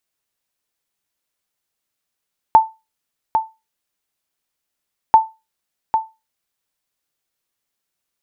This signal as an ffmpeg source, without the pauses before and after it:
ffmpeg -f lavfi -i "aevalsrc='0.891*(sin(2*PI*886*mod(t,2.59))*exp(-6.91*mod(t,2.59)/0.24)+0.422*sin(2*PI*886*max(mod(t,2.59)-0.8,0))*exp(-6.91*max(mod(t,2.59)-0.8,0)/0.24))':duration=5.18:sample_rate=44100" out.wav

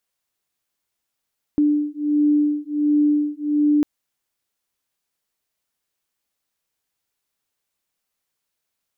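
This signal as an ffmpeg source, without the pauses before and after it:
ffmpeg -f lavfi -i "aevalsrc='0.112*(sin(2*PI*295*t)+sin(2*PI*296.4*t))':duration=2.25:sample_rate=44100" out.wav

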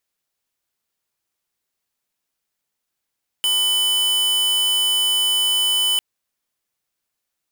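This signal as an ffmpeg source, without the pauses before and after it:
ffmpeg -f lavfi -i "aevalsrc='0.119*(2*lt(mod(3000*t,1),0.5)-1)':duration=2.55:sample_rate=44100" out.wav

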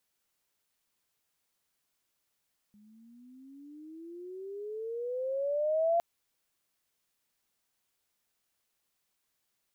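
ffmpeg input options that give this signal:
ffmpeg -f lavfi -i "aevalsrc='pow(10,(-23+33*(t/3.26-1))/20)*sin(2*PI*205*3.26/(21*log(2)/12)*(exp(21*log(2)/12*t/3.26)-1))':duration=3.26:sample_rate=44100" out.wav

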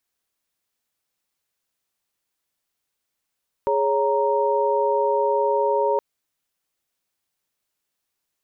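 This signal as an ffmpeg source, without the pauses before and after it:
ffmpeg -f lavfi -i "aevalsrc='0.0794*(sin(2*PI*415.3*t)+sin(2*PI*554.37*t)+sin(2*PI*932.33*t))':duration=2.32:sample_rate=44100" out.wav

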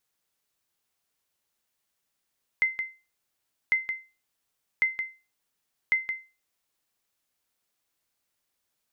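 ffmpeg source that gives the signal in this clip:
ffmpeg -f lavfi -i "aevalsrc='0.168*(sin(2*PI*2070*mod(t,1.1))*exp(-6.91*mod(t,1.1)/0.3)+0.398*sin(2*PI*2070*max(mod(t,1.1)-0.17,0))*exp(-6.91*max(mod(t,1.1)-0.17,0)/0.3))':duration=4.4:sample_rate=44100" out.wav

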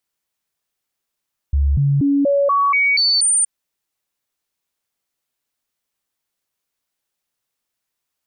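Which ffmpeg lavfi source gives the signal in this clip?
ffmpeg -f lavfi -i "aevalsrc='0.237*clip(min(mod(t,0.24),0.24-mod(t,0.24))/0.005,0,1)*sin(2*PI*70.4*pow(2,floor(t/0.24)/1)*mod(t,0.24))':duration=1.92:sample_rate=44100" out.wav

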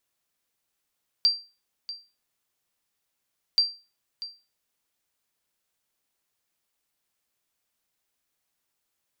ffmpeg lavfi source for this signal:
ffmpeg -f lavfi -i "aevalsrc='0.224*(sin(2*PI*4710*mod(t,2.33))*exp(-6.91*mod(t,2.33)/0.31)+0.168*sin(2*PI*4710*max(mod(t,2.33)-0.64,0))*exp(-6.91*max(mod(t,2.33)-0.64,0)/0.31))':duration=4.66:sample_rate=44100" out.wav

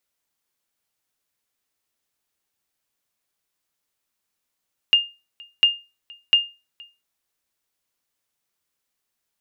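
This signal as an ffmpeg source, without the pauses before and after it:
ffmpeg -f lavfi -i "aevalsrc='0.422*(sin(2*PI*2820*mod(t,0.7))*exp(-6.91*mod(t,0.7)/0.28)+0.0447*sin(2*PI*2820*max(mod(t,0.7)-0.47,0))*exp(-6.91*max(mod(t,0.7)-0.47,0)/0.28))':duration=2.1:sample_rate=44100" out.wav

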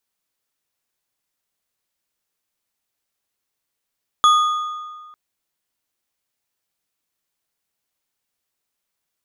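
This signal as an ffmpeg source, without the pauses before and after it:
ffmpeg -f lavfi -i "aevalsrc='0.376*pow(10,-3*t/1.63)*sin(2*PI*1230*t)+0.133*pow(10,-3*t/1.202)*sin(2*PI*3391.1*t)+0.0473*pow(10,-3*t/0.983)*sin(2*PI*6646.9*t)+0.0168*pow(10,-3*t/0.845)*sin(2*PI*10987.6*t)':duration=0.9:sample_rate=44100" out.wav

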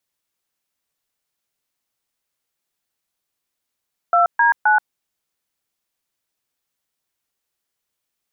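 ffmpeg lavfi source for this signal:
ffmpeg -f lavfi -i "aevalsrc='0.2*clip(min(mod(t,0.262),0.13-mod(t,0.262))/0.002,0,1)*(eq(floor(t/0.262),0)*(sin(2*PI*697*mod(t,0.262))+sin(2*PI*1336*mod(t,0.262)))+eq(floor(t/0.262),1)*(sin(2*PI*941*mod(t,0.262))+sin(2*PI*1633*mod(t,0.262)))+eq(floor(t/0.262),2)*(sin(2*PI*852*mod(t,0.262))+sin(2*PI*1477*mod(t,0.262))))':duration=0.786:sample_rate=44100" out.wav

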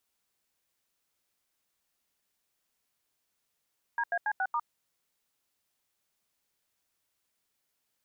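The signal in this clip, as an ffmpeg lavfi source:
ffmpeg -f lavfi -i "aevalsrc='0.0335*clip(min(mod(t,0.14),0.057-mod(t,0.14))/0.002,0,1)*(eq(floor(t/0.14),0)*(sin(2*PI*941*mod(t,0.14))+sin(2*PI*1633*mod(t,0.14)))+eq(floor(t/0.14),1)*(sin(2*PI*697*mod(t,0.14))+sin(2*PI*1633*mod(t,0.14)))+eq(floor(t/0.14),2)*(sin(2*PI*852*mod(t,0.14))+sin(2*PI*1633*mod(t,0.14)))+eq(floor(t/0.14),3)*(sin(2*PI*770*mod(t,0.14))+sin(2*PI*1477*mod(t,0.14)))+eq(floor(t/0.14),4)*(sin(2*PI*941*mod(t,0.14))+sin(2*PI*1209*mod(t,0.14))))':duration=0.7:sample_rate=44100" out.wav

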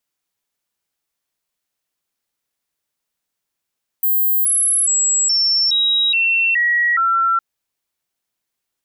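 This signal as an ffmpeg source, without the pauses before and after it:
ffmpeg -f lavfi -i "aevalsrc='0.224*clip(min(mod(t,0.42),0.42-mod(t,0.42))/0.005,0,1)*sin(2*PI*15300*pow(2,-floor(t/0.42)/2)*mod(t,0.42))':duration=3.36:sample_rate=44100" out.wav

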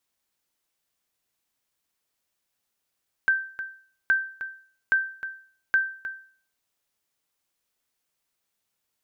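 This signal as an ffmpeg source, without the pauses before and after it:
ffmpeg -f lavfi -i "aevalsrc='0.2*(sin(2*PI*1560*mod(t,0.82))*exp(-6.91*mod(t,0.82)/0.47)+0.251*sin(2*PI*1560*max(mod(t,0.82)-0.31,0))*exp(-6.91*max(mod(t,0.82)-0.31,0)/0.47))':duration=3.28:sample_rate=44100" out.wav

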